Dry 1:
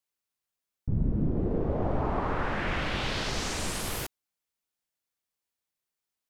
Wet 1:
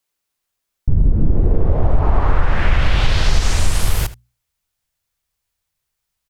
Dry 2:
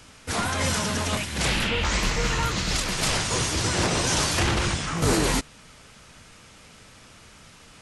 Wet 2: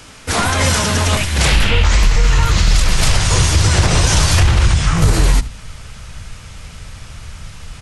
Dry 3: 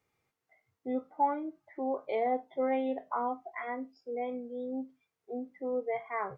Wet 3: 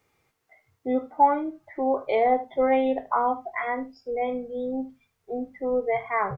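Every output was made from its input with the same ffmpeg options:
-filter_complex "[0:a]bandreject=f=60:t=h:w=6,bandreject=f=120:t=h:w=6,bandreject=f=180:t=h:w=6,bandreject=f=240:t=h:w=6,asubboost=boost=8.5:cutoff=97,asplit=2[a][b];[b]alimiter=limit=-12dB:level=0:latency=1:release=36,volume=1dB[c];[a][c]amix=inputs=2:normalize=0,acompressor=threshold=-11dB:ratio=6,aecho=1:1:76:0.133,volume=3.5dB"

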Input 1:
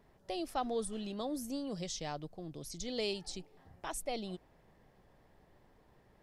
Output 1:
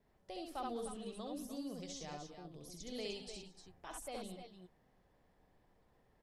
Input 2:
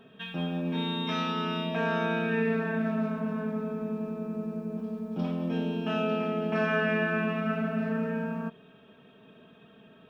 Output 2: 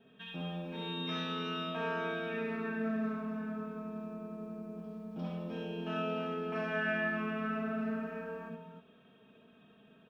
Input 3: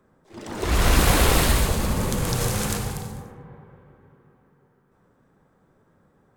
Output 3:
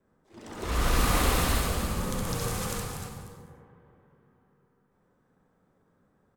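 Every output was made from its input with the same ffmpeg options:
-filter_complex "[0:a]adynamicequalizer=threshold=0.00282:dfrequency=1200:dqfactor=7.6:tfrequency=1200:tqfactor=7.6:attack=5:release=100:ratio=0.375:range=3.5:mode=boostabove:tftype=bell,asplit=2[a][b];[b]aecho=0:1:64|68|179|212|299|310:0.376|0.596|0.106|0.106|0.299|0.266[c];[a][c]amix=inputs=2:normalize=0,volume=-9dB"

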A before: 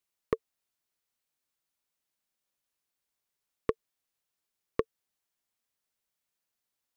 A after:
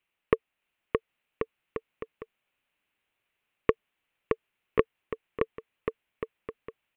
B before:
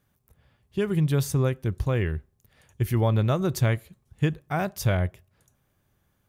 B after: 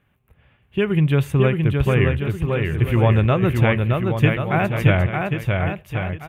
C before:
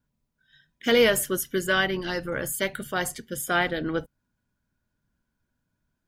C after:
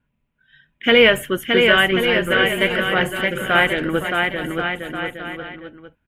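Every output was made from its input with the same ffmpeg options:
-af "highshelf=f=3.7k:t=q:w=3:g=-11.5,aecho=1:1:620|1085|1434|1695|1891:0.631|0.398|0.251|0.158|0.1,volume=5.5dB"

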